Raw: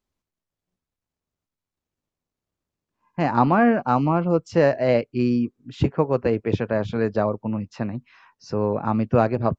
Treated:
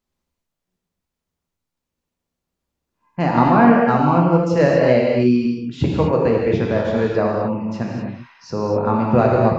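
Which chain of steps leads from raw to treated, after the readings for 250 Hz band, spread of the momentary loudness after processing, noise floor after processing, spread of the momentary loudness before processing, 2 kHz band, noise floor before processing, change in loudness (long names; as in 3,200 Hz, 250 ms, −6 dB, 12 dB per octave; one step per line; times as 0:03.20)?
+5.5 dB, 12 LU, −82 dBFS, 11 LU, +4.5 dB, below −85 dBFS, +5.0 dB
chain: reverb whose tail is shaped and stops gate 280 ms flat, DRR −2 dB
level +1 dB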